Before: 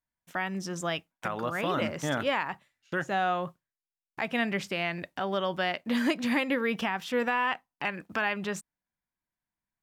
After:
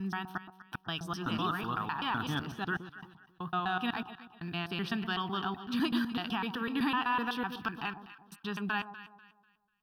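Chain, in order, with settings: slices in reverse order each 0.126 s, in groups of 5; fixed phaser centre 2100 Hz, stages 6; on a send: echo with dull and thin repeats by turns 0.123 s, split 980 Hz, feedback 54%, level -9 dB

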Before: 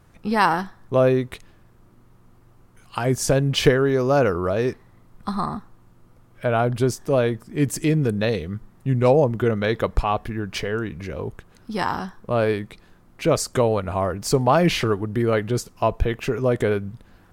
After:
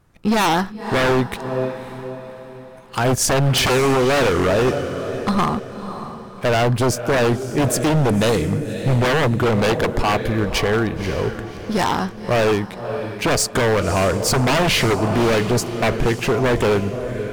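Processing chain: sample leveller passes 2; diffused feedback echo 0.563 s, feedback 41%, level -11.5 dB; wavefolder -11.5 dBFS

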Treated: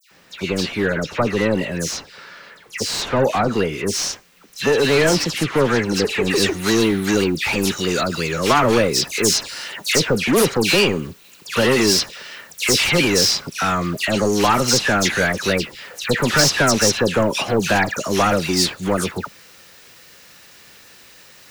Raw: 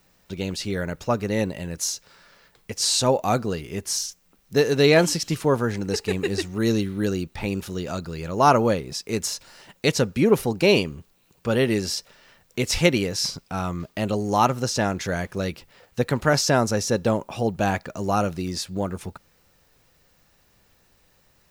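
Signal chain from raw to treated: bell 790 Hz -7.5 dB 1.4 oct; overdrive pedal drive 32 dB, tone 1600 Hz, clips at -2.5 dBFS, from 3.93 s tone 2600 Hz, from 6.3 s tone 7100 Hz; dispersion lows, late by 0.113 s, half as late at 2200 Hz; gain -5 dB

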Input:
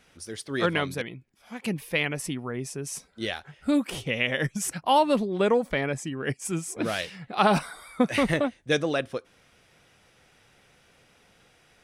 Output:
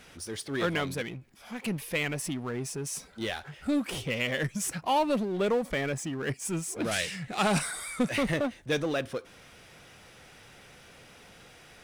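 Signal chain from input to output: power-law curve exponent 0.7; 6.91–8.09 graphic EQ 125/1000/2000/8000 Hz +4/-4/+5/+12 dB; gain -7.5 dB

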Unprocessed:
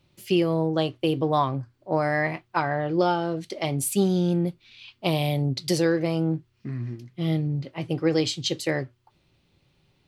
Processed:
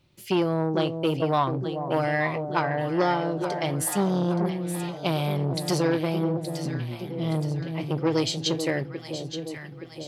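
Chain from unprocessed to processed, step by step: on a send: echo with dull and thin repeats by turns 0.436 s, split 820 Hz, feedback 75%, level -7.5 dB; on the sum: core saturation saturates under 830 Hz

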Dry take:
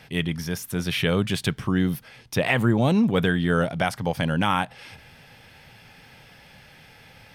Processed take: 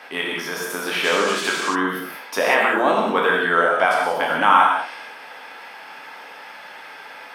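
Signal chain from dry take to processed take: spectral trails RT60 0.32 s; HPF 270 Hz 24 dB/oct; bell 1100 Hz +14.5 dB 1.8 oct; in parallel at +0.5 dB: compressor, threshold -29 dBFS, peak gain reduction 22 dB; on the sum: non-linear reverb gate 0.21 s flat, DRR -1.5 dB; 1.03–1.74 band noise 1000–7800 Hz -26 dBFS; gain -7 dB

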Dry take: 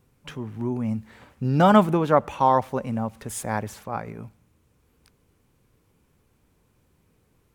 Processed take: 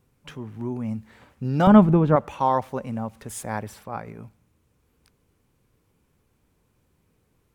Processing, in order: 1.67–2.16 RIAA curve playback; 3.47–4.07 notch 6600 Hz, Q 9; gain -2.5 dB

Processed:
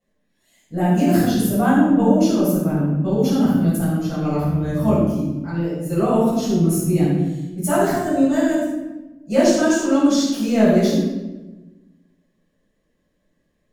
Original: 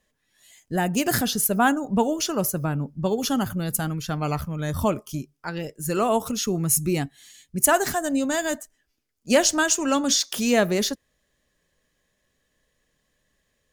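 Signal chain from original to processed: bell 280 Hz +12.5 dB 2.5 oct; transient shaper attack -2 dB, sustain +2 dB; shoebox room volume 590 m³, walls mixed, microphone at 7 m; gain -18 dB

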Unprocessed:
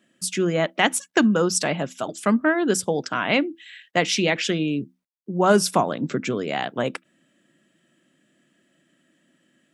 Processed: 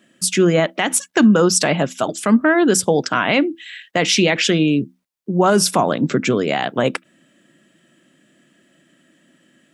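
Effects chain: limiter -13 dBFS, peak gain reduction 11 dB; gain +8 dB

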